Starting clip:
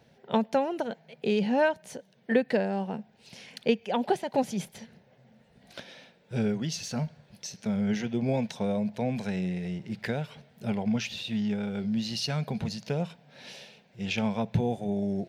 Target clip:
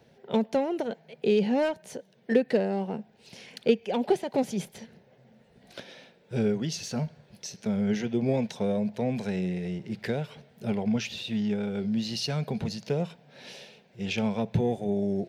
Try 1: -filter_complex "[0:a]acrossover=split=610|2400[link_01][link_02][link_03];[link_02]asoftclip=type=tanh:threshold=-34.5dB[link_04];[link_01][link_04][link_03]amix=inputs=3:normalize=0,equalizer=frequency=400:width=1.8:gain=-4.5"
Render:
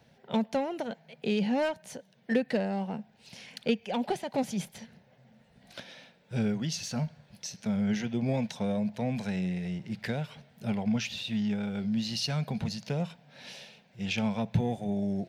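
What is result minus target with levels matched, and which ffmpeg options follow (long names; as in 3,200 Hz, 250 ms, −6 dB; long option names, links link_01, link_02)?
500 Hz band −3.5 dB
-filter_complex "[0:a]acrossover=split=610|2400[link_01][link_02][link_03];[link_02]asoftclip=type=tanh:threshold=-34.5dB[link_04];[link_01][link_04][link_03]amix=inputs=3:normalize=0,equalizer=frequency=400:width=1.8:gain=5"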